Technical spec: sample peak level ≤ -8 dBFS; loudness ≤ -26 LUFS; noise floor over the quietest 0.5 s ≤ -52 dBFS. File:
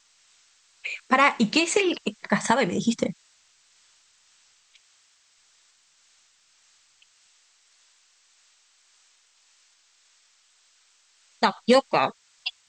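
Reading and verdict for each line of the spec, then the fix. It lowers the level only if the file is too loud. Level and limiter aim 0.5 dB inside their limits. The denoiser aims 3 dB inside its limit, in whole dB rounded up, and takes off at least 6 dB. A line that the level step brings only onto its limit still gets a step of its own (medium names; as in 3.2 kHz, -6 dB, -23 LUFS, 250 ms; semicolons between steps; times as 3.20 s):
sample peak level -5.5 dBFS: fail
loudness -23.5 LUFS: fail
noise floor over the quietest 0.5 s -63 dBFS: pass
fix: trim -3 dB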